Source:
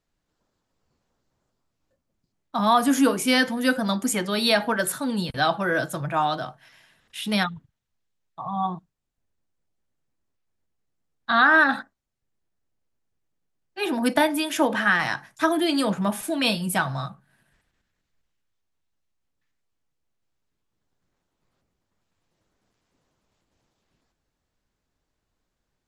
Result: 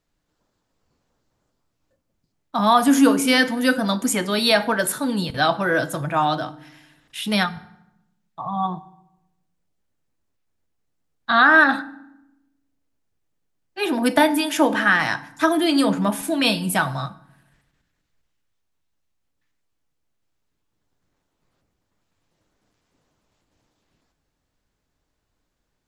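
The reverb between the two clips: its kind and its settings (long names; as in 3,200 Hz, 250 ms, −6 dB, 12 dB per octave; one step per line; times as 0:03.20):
feedback delay network reverb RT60 0.86 s, low-frequency decay 1.4×, high-frequency decay 0.7×, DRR 14.5 dB
level +3 dB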